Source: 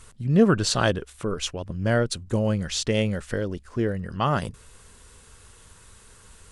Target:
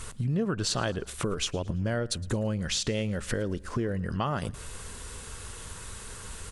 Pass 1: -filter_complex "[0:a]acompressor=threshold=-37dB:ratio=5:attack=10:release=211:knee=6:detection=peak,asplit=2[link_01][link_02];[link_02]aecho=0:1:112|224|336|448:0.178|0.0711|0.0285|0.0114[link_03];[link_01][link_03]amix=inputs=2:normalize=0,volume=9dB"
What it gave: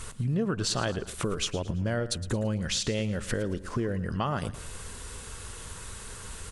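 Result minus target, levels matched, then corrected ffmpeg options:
echo-to-direct +7 dB
-filter_complex "[0:a]acompressor=threshold=-37dB:ratio=5:attack=10:release=211:knee=6:detection=peak,asplit=2[link_01][link_02];[link_02]aecho=0:1:112|224|336:0.0794|0.0318|0.0127[link_03];[link_01][link_03]amix=inputs=2:normalize=0,volume=9dB"

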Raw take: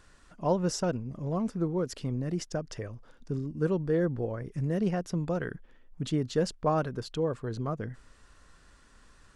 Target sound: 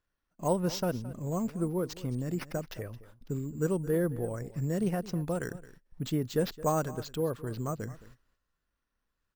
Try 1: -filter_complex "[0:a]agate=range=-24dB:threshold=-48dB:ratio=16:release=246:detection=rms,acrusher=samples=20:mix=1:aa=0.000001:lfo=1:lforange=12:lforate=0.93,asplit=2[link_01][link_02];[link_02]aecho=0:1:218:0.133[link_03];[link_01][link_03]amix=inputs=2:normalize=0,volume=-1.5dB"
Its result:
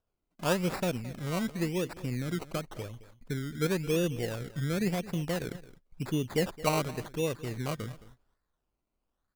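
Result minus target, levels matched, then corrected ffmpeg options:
sample-and-hold swept by an LFO: distortion +11 dB
-filter_complex "[0:a]agate=range=-24dB:threshold=-48dB:ratio=16:release=246:detection=rms,acrusher=samples=5:mix=1:aa=0.000001:lfo=1:lforange=3:lforate=0.93,asplit=2[link_01][link_02];[link_02]aecho=0:1:218:0.133[link_03];[link_01][link_03]amix=inputs=2:normalize=0,volume=-1.5dB"

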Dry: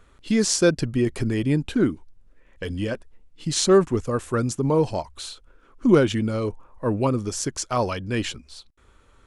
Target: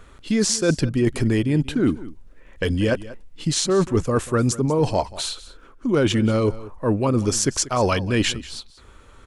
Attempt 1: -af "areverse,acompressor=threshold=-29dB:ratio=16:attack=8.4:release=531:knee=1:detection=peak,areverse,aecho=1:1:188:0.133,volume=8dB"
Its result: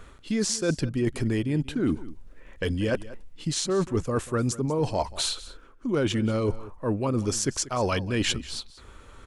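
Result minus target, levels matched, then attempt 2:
downward compressor: peak gain reduction +6 dB
-af "areverse,acompressor=threshold=-22.5dB:ratio=16:attack=8.4:release=531:knee=1:detection=peak,areverse,aecho=1:1:188:0.133,volume=8dB"

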